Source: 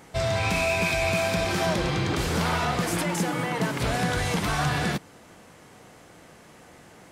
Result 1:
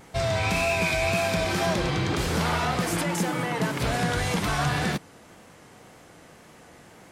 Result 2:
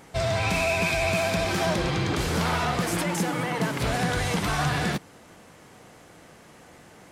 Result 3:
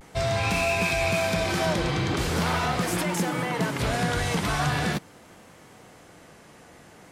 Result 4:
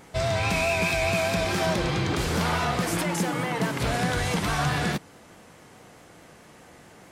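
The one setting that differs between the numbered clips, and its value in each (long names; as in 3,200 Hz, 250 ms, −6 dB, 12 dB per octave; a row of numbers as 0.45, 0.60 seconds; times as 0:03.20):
pitch vibrato, speed: 1.9, 15, 0.42, 4.7 Hertz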